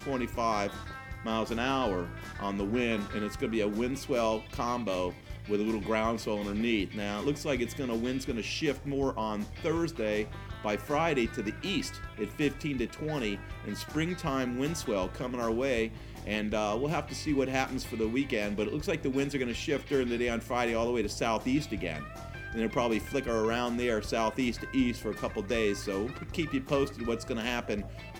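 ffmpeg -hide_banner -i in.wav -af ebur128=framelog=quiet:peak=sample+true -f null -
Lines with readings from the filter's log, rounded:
Integrated loudness:
  I:         -31.7 LUFS
  Threshold: -41.8 LUFS
Loudness range:
  LRA:         1.8 LU
  Threshold: -51.8 LUFS
  LRA low:   -32.6 LUFS
  LRA high:  -30.9 LUFS
Sample peak:
  Peak:      -11.5 dBFS
True peak:
  Peak:      -11.4 dBFS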